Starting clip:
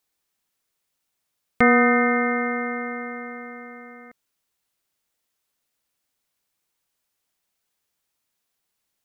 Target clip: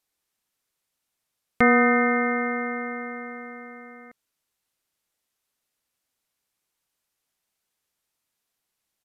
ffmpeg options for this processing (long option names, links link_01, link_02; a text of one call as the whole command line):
ffmpeg -i in.wav -af "aresample=32000,aresample=44100,volume=-1.5dB" out.wav